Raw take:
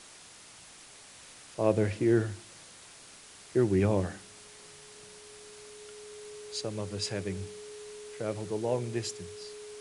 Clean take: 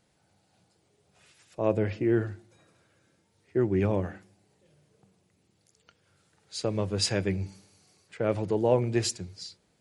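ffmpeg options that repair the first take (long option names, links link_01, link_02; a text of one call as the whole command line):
ffmpeg -i in.wav -af "adeclick=threshold=4,bandreject=frequency=420:width=30,afwtdn=0.0035,asetnsamples=nb_out_samples=441:pad=0,asendcmd='6.61 volume volume 7dB',volume=0dB" out.wav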